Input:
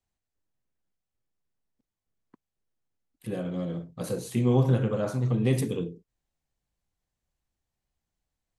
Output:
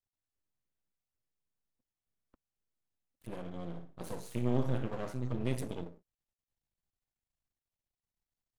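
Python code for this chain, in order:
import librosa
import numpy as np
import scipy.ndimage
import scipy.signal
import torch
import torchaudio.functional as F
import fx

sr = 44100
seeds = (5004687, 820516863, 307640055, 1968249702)

y = np.maximum(x, 0.0)
y = fx.room_flutter(y, sr, wall_m=9.9, rt60_s=0.34, at=(3.61, 4.83))
y = y * librosa.db_to_amplitude(-6.5)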